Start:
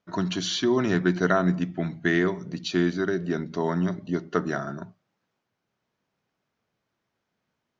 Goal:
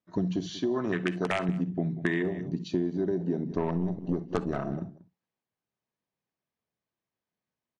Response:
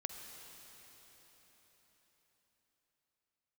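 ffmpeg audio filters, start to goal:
-filter_complex "[0:a]aeval=exprs='(mod(3.16*val(0)+1,2)-1)/3.16':c=same,afwtdn=0.0398,asettb=1/sr,asplit=3[a][b][c];[a]atrim=end=0.594[d];[b]atrim=start=0.59:end=1.49,asetpts=PTS-STARTPTS,afade=t=in:d=0.004:c=qsin,afade=t=out:st=0.896:d=0.004:c=qsin,lowshelf=f=380:g=-8.5[e];[c]atrim=start=1.486[f];[d][e]acrossfade=d=0.004:c1=hsin:c2=qsin[g];[g][f]acrossfade=d=0.004:c1=qsin:c2=hsin,asettb=1/sr,asplit=3[h][i][j];[h]atrim=end=3.504[k];[i]atrim=start=3.5:end=4.73,asetpts=PTS-STARTPTS,afade=t=in:d=0.004:c=qsin,afade=t=out:st=1.226:d=0.004:c=qsin,aeval=exprs='0.316*(cos(1*acos(clip(val(0)/0.316,-1,1)))-cos(1*PI/2))+0.0178*(cos(8*acos(clip(val(0)/0.316,-1,1)))-cos(8*PI/2))':c=same[l];[j]atrim=start=4.726[m];[k][l]acrossfade=d=0.004:c1=hsin:c2=qsin[n];[n][m]acrossfade=d=0.004:c1=qsin:c2=hsin,bandreject=f=1.4k:w=8.2,aecho=1:1:187:0.1[o];[1:a]atrim=start_sample=2205,atrim=end_sample=3087[p];[o][p]afir=irnorm=-1:irlink=0,acompressor=threshold=-32dB:ratio=6,volume=7dB" -ar 22050 -c:a aac -b:a 64k

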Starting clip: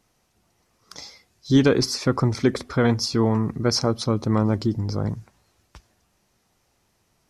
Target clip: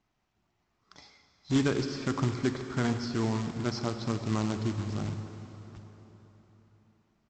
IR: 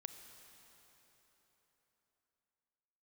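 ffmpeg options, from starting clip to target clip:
-filter_complex "[0:a]lowpass=3.5k,equalizer=f=500:w=7.4:g=-13.5,aresample=16000,acrusher=bits=3:mode=log:mix=0:aa=0.000001,aresample=44100[a];[1:a]atrim=start_sample=2205[b];[a][b]afir=irnorm=-1:irlink=0,volume=-4dB"

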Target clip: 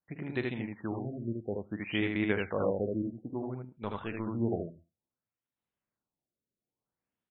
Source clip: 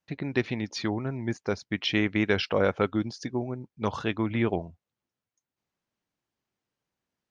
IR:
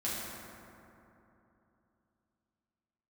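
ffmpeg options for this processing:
-filter_complex "[0:a]aecho=1:1:47|78:0.237|0.708,asettb=1/sr,asplit=3[a][b][c];[a]atrim=end=3.694[d];[b]atrim=start=3.69:end=4.27,asetpts=PTS-STARTPTS,afade=t=in:d=0.004:c=qsin,afade=t=out:st=0.576:d=0.004:c=qsin,aeval=exprs='(tanh(6.31*val(0)+0.6)-tanh(0.6))/6.31':c=same[e];[c]atrim=start=4.266[f];[d][e]acrossfade=d=0.004:c1=hsin:c2=qsin[g];[g][f]acrossfade=d=0.004:c1=qsin:c2=hsin,asplit=2[h][i];[1:a]atrim=start_sample=2205,atrim=end_sample=6615[j];[i][j]afir=irnorm=-1:irlink=0,volume=-24dB[k];[h][k]amix=inputs=2:normalize=0,afftfilt=real='re*lt(b*sr/1024,640*pow(4200/640,0.5+0.5*sin(2*PI*0.58*pts/sr)))':imag='im*lt(b*sr/1024,640*pow(4200/640,0.5+0.5*sin(2*PI*0.58*pts/sr)))':win_size=1024:overlap=0.75,volume=-7.5dB"

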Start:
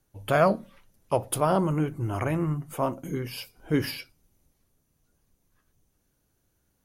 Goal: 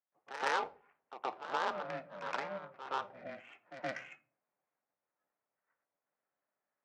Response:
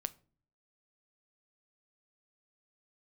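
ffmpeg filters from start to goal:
-filter_complex "[0:a]alimiter=limit=-16.5dB:level=0:latency=1:release=232,highpass=f=290:t=q:w=0.5412,highpass=f=290:t=q:w=1.307,lowpass=f=2.3k:t=q:w=0.5176,lowpass=f=2.3k:t=q:w=0.7071,lowpass=f=2.3k:t=q:w=1.932,afreqshift=53,aeval=exprs='val(0)*sin(2*PI*200*n/s)':c=same,adynamicsmooth=sensitivity=2:basefreq=1.3k,aderivative,asplit=2[a][b];[1:a]atrim=start_sample=2205,adelay=121[c];[b][c]afir=irnorm=-1:irlink=0,volume=12.5dB[d];[a][d]amix=inputs=2:normalize=0,volume=4dB"

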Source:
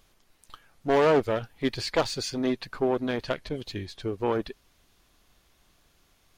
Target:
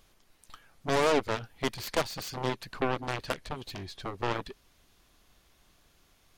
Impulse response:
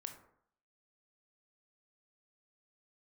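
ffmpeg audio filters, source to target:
-af "acompressor=threshold=-31dB:ratio=1.5,aeval=exprs='0.158*(cos(1*acos(clip(val(0)/0.158,-1,1)))-cos(1*PI/2))+0.0447*(cos(7*acos(clip(val(0)/0.158,-1,1)))-cos(7*PI/2))':c=same"

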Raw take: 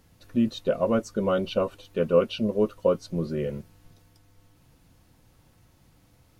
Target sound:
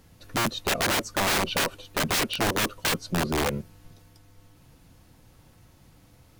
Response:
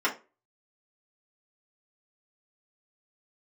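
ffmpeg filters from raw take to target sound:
-af "aeval=exprs='(mod(14.1*val(0)+1,2)-1)/14.1':c=same,volume=4dB"

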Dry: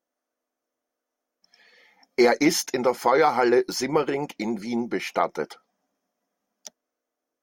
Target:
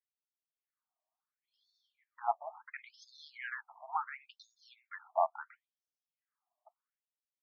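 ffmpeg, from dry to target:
-af "equalizer=f=6.6k:t=o:w=2.7:g=-13.5,afftfilt=real='re*between(b*sr/1024,840*pow(5000/840,0.5+0.5*sin(2*PI*0.72*pts/sr))/1.41,840*pow(5000/840,0.5+0.5*sin(2*PI*0.72*pts/sr))*1.41)':imag='im*between(b*sr/1024,840*pow(5000/840,0.5+0.5*sin(2*PI*0.72*pts/sr))/1.41,840*pow(5000/840,0.5+0.5*sin(2*PI*0.72*pts/sr))*1.41)':win_size=1024:overlap=0.75,volume=-3dB"

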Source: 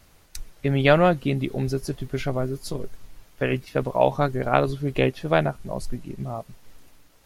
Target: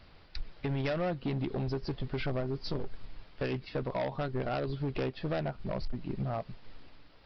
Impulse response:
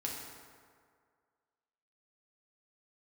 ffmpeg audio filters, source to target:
-af "acompressor=threshold=-28dB:ratio=3,aresample=11025,asoftclip=type=hard:threshold=-28dB,aresample=44100"

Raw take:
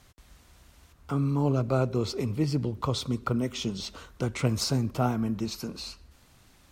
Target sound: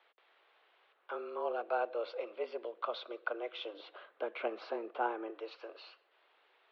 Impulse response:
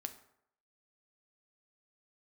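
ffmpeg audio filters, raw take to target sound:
-filter_complex "[0:a]asettb=1/sr,asplit=3[a][b][c];[a]atrim=end=3.734[d];[b]atrim=start=3.73:end=5.3,asetpts=PTS-STARTPTS,afade=t=in:d=0.004:c=qsin,afade=t=out:st=1.566:d=0.004:c=qsin,aemphasis=mode=reproduction:type=bsi[e];[c]atrim=start=5.296[f];[d][e]acrossfade=d=0.004:c1=hsin:c2=qsin[g];[g][f]acrossfade=d=0.004:c1=qsin:c2=hsin,highpass=f=350:t=q:w=0.5412,highpass=f=350:t=q:w=1.307,lowpass=f=3.4k:t=q:w=0.5176,lowpass=f=3.4k:t=q:w=0.7071,lowpass=f=3.4k:t=q:w=1.932,afreqshift=110,volume=-5dB"

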